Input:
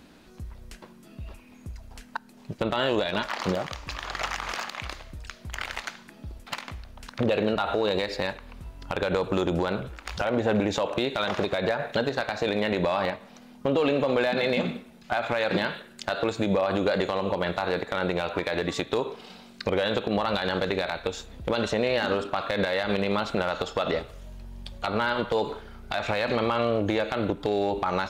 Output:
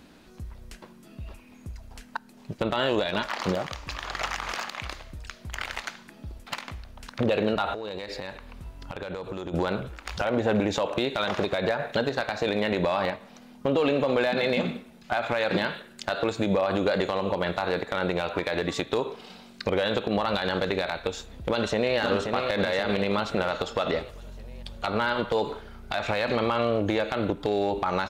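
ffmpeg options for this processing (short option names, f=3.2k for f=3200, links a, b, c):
-filter_complex "[0:a]asettb=1/sr,asplit=3[a][b][c];[a]atrim=end=7.734[d];[b]atrim=start=7.73:end=9.54,asetpts=PTS-STARTPTS,afade=t=in:d=0.004:c=qsin,afade=t=out:st=1.806:d=0.004:c=qsin,acompressor=threshold=-31dB:ratio=6:attack=3.2:release=140:knee=1:detection=peak[e];[c]atrim=start=9.536[f];[d][e]acrossfade=d=0.004:c1=hsin:c2=qsin[g];[g][f]acrossfade=d=0.004:c1=qsin:c2=hsin,asplit=2[h][i];[i]afade=t=in:st=21.5:d=0.01,afade=t=out:st=21.97:d=0.01,aecho=0:1:530|1060|1590|2120|2650|3180|3710:0.530884|0.291986|0.160593|0.0883259|0.0485792|0.0267186|0.0146952[j];[h][j]amix=inputs=2:normalize=0"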